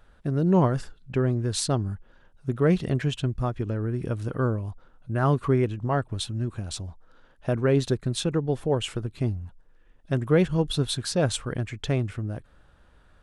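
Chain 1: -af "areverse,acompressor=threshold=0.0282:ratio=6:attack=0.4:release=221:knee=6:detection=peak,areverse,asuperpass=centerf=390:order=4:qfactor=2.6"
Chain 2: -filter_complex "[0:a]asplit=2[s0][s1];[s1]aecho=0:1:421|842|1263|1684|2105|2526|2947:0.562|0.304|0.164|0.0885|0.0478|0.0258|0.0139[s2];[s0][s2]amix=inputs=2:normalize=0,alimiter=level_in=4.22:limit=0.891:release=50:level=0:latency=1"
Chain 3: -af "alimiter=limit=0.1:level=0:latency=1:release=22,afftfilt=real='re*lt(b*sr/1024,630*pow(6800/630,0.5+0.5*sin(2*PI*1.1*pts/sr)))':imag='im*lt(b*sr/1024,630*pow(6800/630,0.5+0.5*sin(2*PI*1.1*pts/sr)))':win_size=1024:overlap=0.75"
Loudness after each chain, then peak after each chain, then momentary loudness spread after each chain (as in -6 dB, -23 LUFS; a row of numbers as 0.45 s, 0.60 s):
-46.5 LUFS, -14.0 LUFS, -31.5 LUFS; -31.0 dBFS, -1.0 dBFS, -18.5 dBFS; 12 LU, 7 LU, 7 LU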